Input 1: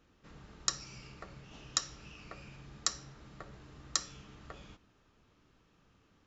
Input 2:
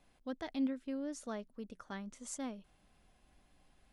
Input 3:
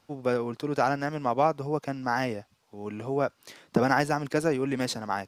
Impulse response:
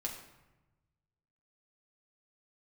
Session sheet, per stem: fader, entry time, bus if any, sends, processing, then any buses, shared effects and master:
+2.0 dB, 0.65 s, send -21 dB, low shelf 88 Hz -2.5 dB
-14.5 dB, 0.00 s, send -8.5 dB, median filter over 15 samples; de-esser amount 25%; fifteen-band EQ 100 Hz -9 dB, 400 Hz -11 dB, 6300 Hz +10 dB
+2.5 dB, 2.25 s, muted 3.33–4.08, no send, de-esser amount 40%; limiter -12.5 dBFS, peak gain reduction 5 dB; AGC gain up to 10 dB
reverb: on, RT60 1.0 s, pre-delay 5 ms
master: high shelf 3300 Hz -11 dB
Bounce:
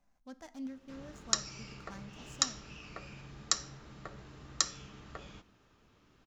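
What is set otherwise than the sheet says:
stem 2 -14.5 dB -> -7.0 dB; stem 3: muted; master: missing high shelf 3300 Hz -11 dB

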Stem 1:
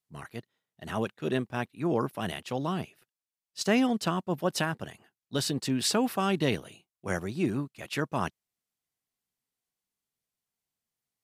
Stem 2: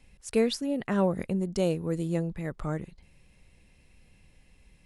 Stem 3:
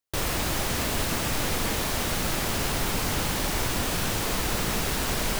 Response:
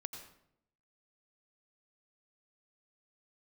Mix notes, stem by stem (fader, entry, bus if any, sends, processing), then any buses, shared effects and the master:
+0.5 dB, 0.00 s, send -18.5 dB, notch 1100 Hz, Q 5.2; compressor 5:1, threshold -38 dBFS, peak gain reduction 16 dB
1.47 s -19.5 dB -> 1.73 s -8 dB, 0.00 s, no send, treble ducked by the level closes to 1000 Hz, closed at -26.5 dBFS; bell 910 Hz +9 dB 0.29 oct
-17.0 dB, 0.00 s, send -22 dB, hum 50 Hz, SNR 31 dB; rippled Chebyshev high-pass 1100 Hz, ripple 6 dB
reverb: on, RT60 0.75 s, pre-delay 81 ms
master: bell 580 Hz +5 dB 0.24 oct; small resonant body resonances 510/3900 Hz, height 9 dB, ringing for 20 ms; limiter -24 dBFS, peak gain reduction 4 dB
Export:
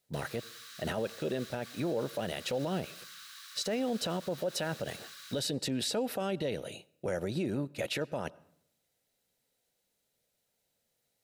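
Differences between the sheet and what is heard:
stem 1 +0.5 dB -> +8.0 dB; stem 2: muted

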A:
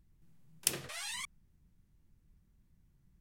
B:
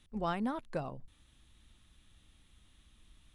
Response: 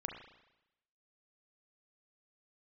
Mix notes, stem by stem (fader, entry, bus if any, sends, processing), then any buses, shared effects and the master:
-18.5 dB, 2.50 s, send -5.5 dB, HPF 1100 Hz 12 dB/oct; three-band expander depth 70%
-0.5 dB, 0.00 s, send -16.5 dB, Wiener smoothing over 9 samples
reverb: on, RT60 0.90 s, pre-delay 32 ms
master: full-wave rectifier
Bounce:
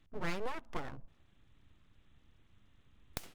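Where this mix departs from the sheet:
stem A: missing HPF 1100 Hz 12 dB/oct; stem B: send -16.5 dB -> -23.5 dB

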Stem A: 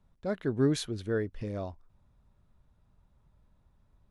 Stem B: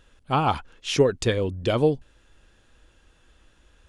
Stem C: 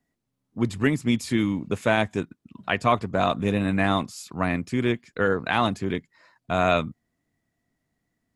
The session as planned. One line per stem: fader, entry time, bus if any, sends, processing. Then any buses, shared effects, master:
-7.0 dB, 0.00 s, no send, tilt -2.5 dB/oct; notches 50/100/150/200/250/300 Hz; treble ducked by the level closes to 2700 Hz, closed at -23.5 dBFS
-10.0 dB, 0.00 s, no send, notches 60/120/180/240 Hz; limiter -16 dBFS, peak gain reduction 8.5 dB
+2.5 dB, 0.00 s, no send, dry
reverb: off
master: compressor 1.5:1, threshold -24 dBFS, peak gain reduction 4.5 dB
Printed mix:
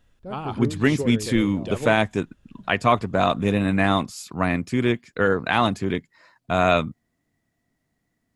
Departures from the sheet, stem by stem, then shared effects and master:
stem B: missing limiter -16 dBFS, peak gain reduction 8.5 dB; master: missing compressor 1.5:1, threshold -24 dBFS, peak gain reduction 4.5 dB

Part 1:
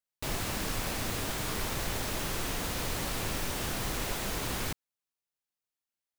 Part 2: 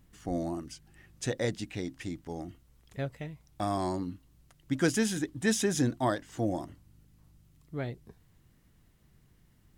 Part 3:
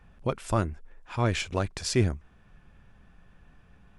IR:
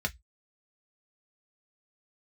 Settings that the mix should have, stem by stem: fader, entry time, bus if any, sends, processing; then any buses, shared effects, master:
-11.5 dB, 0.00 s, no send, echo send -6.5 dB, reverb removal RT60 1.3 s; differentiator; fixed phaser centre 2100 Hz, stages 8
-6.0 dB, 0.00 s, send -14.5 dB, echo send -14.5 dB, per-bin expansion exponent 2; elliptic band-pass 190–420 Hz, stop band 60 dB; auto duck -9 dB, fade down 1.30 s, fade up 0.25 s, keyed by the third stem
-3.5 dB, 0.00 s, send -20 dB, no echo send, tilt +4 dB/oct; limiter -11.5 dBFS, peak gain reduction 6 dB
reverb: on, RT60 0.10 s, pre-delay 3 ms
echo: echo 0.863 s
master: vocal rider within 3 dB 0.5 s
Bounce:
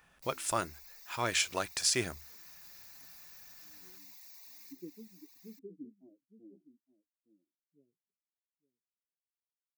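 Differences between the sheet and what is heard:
stem 2 -6.0 dB -> -16.0 dB; master: missing vocal rider within 3 dB 0.5 s

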